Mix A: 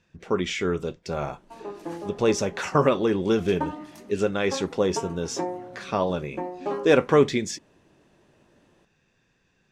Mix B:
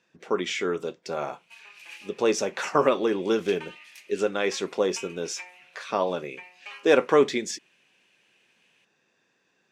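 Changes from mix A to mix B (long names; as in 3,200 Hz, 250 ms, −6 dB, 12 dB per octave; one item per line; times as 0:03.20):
background: add high-pass with resonance 2,500 Hz, resonance Q 10
master: add high-pass filter 290 Hz 12 dB per octave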